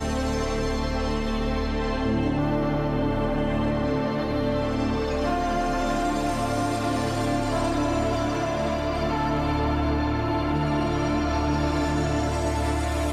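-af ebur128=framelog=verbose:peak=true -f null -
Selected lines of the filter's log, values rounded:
Integrated loudness:
  I:         -25.3 LUFS
  Threshold: -35.3 LUFS
Loudness range:
  LRA:         0.8 LU
  Threshold: -45.3 LUFS
  LRA low:   -25.5 LUFS
  LRA high:  -24.8 LUFS
True peak:
  Peak:      -13.8 dBFS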